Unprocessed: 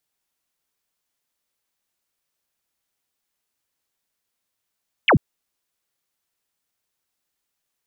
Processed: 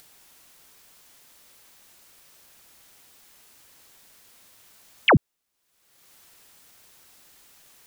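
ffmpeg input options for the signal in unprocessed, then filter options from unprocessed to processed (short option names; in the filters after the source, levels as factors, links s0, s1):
-f lavfi -i "aevalsrc='0.282*clip(t/0.002,0,1)*clip((0.09-t)/0.002,0,1)*sin(2*PI*3400*0.09/log(91/3400)*(exp(log(91/3400)*t/0.09)-1))':d=0.09:s=44100"
-af "acompressor=mode=upward:threshold=0.02:ratio=2.5"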